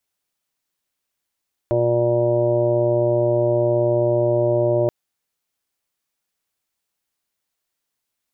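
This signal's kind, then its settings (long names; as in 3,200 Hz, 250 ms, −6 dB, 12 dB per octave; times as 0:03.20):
steady harmonic partials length 3.18 s, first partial 119 Hz, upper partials −14.5/2.5/−6/5/−12.5/−18/−13.5 dB, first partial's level −23 dB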